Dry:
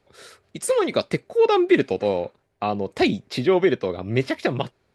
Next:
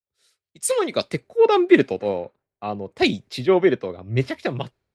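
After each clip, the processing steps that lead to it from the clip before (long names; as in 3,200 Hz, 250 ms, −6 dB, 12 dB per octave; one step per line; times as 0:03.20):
multiband upward and downward expander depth 100%
level −1 dB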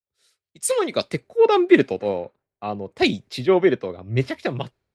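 no processing that can be heard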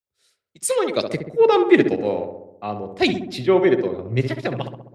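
feedback echo with a low-pass in the loop 66 ms, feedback 65%, low-pass 1,400 Hz, level −6.5 dB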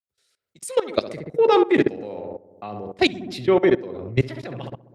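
output level in coarse steps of 18 dB
level +3.5 dB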